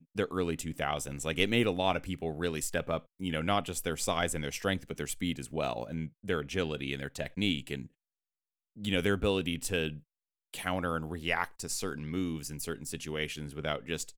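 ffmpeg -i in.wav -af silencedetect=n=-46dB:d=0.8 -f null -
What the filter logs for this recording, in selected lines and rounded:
silence_start: 7.86
silence_end: 8.77 | silence_duration: 0.90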